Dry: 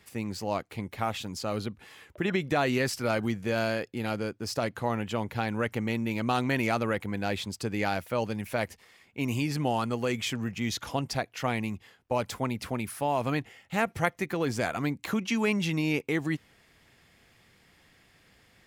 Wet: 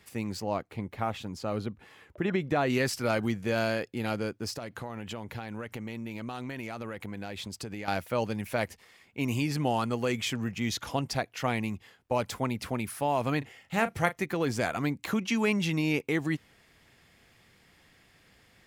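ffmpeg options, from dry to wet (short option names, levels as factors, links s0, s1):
-filter_complex "[0:a]asettb=1/sr,asplit=3[s0][s1][s2];[s0]atrim=end=0.404[s3];[s1]atrim=start=0.4:end=2.7,asetpts=PTS-STARTPTS,afade=t=in:d=0.004:c=qsin,afade=t=out:st=2.296:d=0.004:c=qsin,highshelf=f=2500:g=-9[s4];[s2]atrim=start=2.696[s5];[s3][s4]acrossfade=d=0.004:c1=hsin:c2=qsin[s6];[s6][s5]acrossfade=d=0.004:c1=qsin:c2=hsin,asettb=1/sr,asplit=3[s7][s8][s9];[s7]atrim=end=4.504[s10];[s8]atrim=start=4.5:end=7.88,asetpts=PTS-STARTPTS,afade=t=in:d=0.004:c=qsin,afade=t=out:st=3.376:d=0.004:c=qsin,acompressor=threshold=0.02:ratio=6:attack=3.2:release=140:knee=1:detection=peak[s11];[s9]atrim=start=7.876[s12];[s10][s11]acrossfade=d=0.004:c1=hsin:c2=qsin[s13];[s13][s12]acrossfade=d=0.004:c1=qsin:c2=hsin,asettb=1/sr,asplit=3[s14][s15][s16];[s14]atrim=end=13.384[s17];[s15]atrim=start=13.38:end=14.23,asetpts=PTS-STARTPTS,afade=t=in:d=0.004:c=qsin,afade=t=out:st=0.846:d=0.004:c=qsin,asplit=2[s18][s19];[s19]adelay=36,volume=0.237[s20];[s18][s20]amix=inputs=2:normalize=0,atrim=end_sample=37485[s21];[s16]atrim=start=14.226[s22];[s17][s21]acrossfade=d=0.004:c1=hsin:c2=qsin[s23];[s23][s22]acrossfade=d=0.004:c1=qsin:c2=hsin"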